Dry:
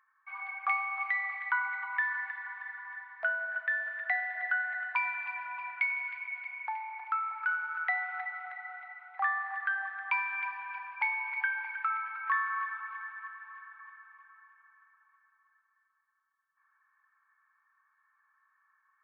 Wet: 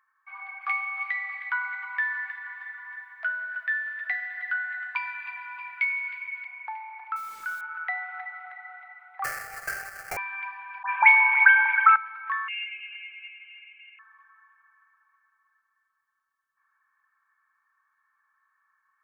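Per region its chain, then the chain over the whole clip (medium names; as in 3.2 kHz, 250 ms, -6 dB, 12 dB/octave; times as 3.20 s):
0.61–6.45 s: high-pass 1.1 kHz + treble shelf 3.6 kHz +11 dB + doubling 13 ms -7 dB
7.16–7.61 s: high-pass 1.1 kHz + treble shelf 3.8 kHz -7 dB + word length cut 8-bit, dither none
9.24–10.17 s: sample-rate reducer 3.1 kHz, jitter 20% + static phaser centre 1 kHz, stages 6
10.83–11.96 s: high-order bell 1.5 kHz +15.5 dB 2.9 oct + phase dispersion highs, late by 108 ms, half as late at 2.9 kHz
12.48–13.99 s: frequency inversion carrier 3.9 kHz + bass shelf 500 Hz +5.5 dB
whole clip: none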